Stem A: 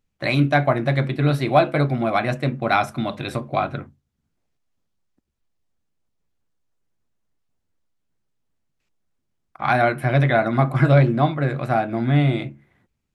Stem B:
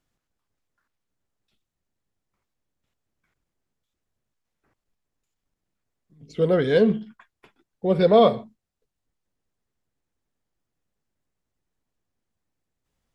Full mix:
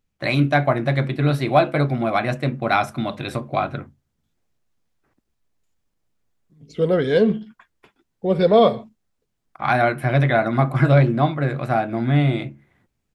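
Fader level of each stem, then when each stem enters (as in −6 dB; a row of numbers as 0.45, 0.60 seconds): 0.0, +1.5 decibels; 0.00, 0.40 seconds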